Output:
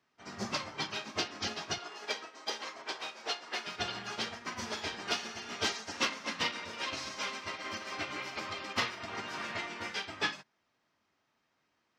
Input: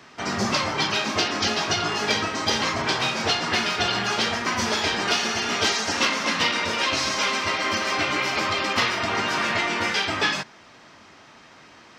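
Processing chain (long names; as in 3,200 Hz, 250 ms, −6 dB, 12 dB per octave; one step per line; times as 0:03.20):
0:01.78–0:03.67: Chebyshev high-pass filter 440 Hz, order 2
expander for the loud parts 2.5 to 1, over −33 dBFS
level −7.5 dB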